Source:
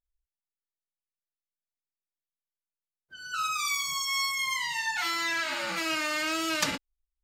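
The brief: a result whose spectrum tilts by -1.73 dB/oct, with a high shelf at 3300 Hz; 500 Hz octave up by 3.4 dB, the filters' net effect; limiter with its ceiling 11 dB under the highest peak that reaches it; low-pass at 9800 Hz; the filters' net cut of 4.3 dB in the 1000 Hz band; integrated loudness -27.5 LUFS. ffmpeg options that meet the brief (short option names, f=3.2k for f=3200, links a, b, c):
-af "lowpass=9.8k,equalizer=f=500:t=o:g=8,equalizer=f=1k:t=o:g=-8.5,highshelf=f=3.3k:g=8.5,volume=-0.5dB,alimiter=limit=-20dB:level=0:latency=1"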